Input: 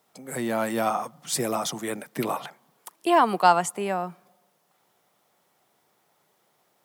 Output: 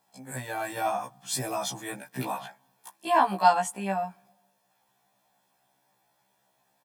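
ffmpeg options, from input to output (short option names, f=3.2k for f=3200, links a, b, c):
-af "aecho=1:1:1.2:0.56,afftfilt=real='re*1.73*eq(mod(b,3),0)':imag='im*1.73*eq(mod(b,3),0)':win_size=2048:overlap=0.75,volume=-2dB"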